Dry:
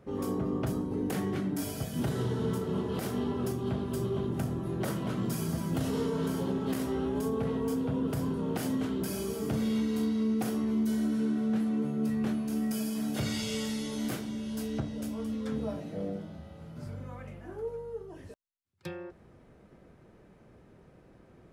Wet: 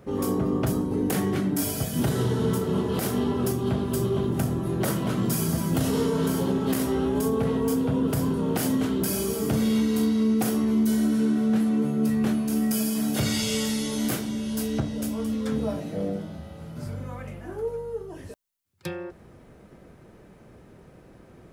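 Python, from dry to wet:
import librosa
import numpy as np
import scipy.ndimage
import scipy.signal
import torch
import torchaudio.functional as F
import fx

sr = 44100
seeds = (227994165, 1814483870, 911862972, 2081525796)

y = fx.high_shelf(x, sr, hz=7300.0, db=7.5)
y = y * librosa.db_to_amplitude(6.5)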